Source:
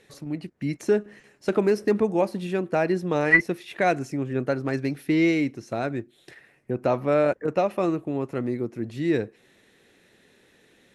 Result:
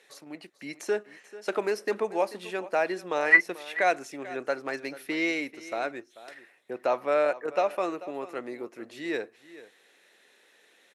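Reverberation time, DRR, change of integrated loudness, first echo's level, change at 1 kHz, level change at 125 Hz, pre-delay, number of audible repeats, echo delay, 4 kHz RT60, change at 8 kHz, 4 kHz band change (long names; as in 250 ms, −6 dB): no reverb audible, no reverb audible, −3.5 dB, −17.0 dB, −1.0 dB, −22.5 dB, no reverb audible, 1, 439 ms, no reverb audible, 0.0 dB, 0.0 dB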